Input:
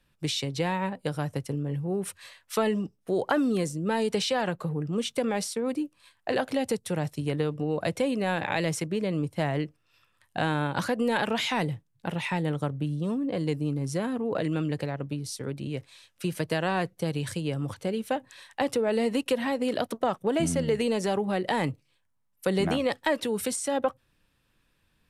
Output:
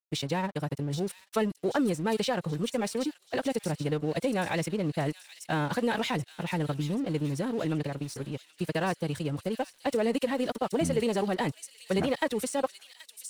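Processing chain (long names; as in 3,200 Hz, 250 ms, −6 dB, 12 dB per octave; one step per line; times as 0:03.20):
phase-vocoder stretch with locked phases 0.53×
dead-zone distortion −47 dBFS
delay with a high-pass on its return 780 ms, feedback 49%, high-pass 4,400 Hz, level −4 dB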